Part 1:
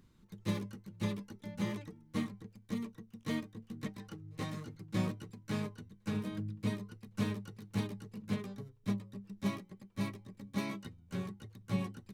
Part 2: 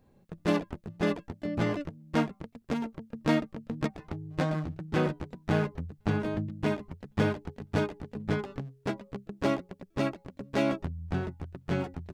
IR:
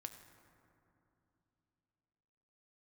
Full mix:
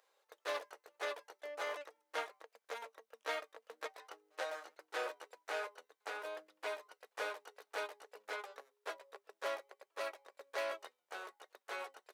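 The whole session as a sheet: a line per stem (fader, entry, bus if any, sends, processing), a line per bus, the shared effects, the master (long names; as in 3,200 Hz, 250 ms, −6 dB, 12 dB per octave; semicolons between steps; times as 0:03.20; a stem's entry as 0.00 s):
−2.0 dB, 0.00 s, no send, Butterworth high-pass 570 Hz 36 dB per octave
−8.0 dB, 0.00 s, polarity flipped, no send, elliptic high-pass filter 470 Hz, stop band 70 dB; parametric band 1,500 Hz +4.5 dB 0.77 octaves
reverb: not used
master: saturating transformer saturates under 1,500 Hz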